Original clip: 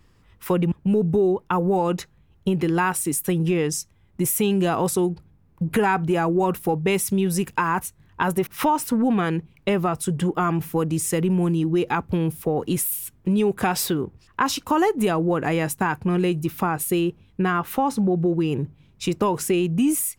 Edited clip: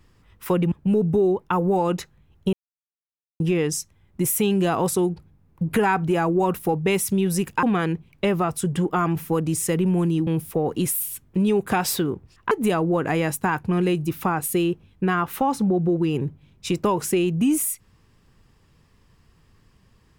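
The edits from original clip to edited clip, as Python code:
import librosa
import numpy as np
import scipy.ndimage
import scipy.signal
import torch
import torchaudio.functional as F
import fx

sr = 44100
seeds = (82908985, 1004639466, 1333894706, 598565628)

y = fx.edit(x, sr, fx.silence(start_s=2.53, length_s=0.87),
    fx.cut(start_s=7.63, length_s=1.44),
    fx.cut(start_s=11.71, length_s=0.47),
    fx.cut(start_s=14.42, length_s=0.46), tone=tone)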